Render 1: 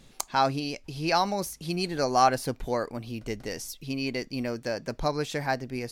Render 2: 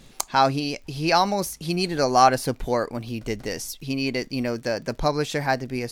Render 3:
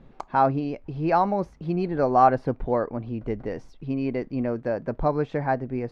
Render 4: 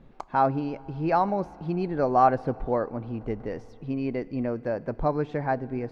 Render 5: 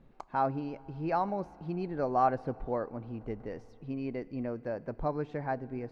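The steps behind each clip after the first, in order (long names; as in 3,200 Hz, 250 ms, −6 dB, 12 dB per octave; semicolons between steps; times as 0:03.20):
surface crackle 61 per second −46 dBFS; level +5 dB
low-pass filter 1,200 Hz 12 dB per octave
feedback delay network reverb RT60 4 s, high-frequency decay 0.9×, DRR 19.5 dB; level −2 dB
notch filter 3,400 Hz, Q 23; level −7 dB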